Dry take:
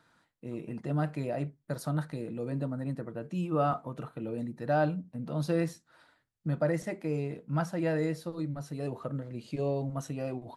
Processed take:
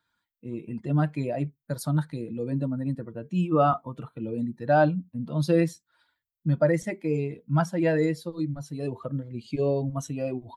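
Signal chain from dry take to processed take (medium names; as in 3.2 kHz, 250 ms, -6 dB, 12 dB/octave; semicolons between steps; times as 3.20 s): expander on every frequency bin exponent 1.5; trim +8.5 dB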